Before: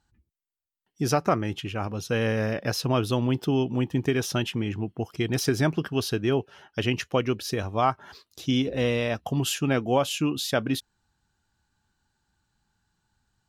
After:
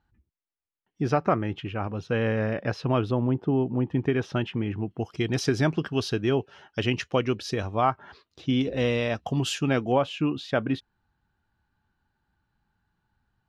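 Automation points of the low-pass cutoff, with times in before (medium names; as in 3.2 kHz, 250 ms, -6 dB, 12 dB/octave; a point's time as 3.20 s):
2.6 kHz
from 3.11 s 1.2 kHz
from 3.87 s 2.3 kHz
from 4.91 s 6 kHz
from 7.75 s 2.9 kHz
from 8.61 s 6.4 kHz
from 9.92 s 2.5 kHz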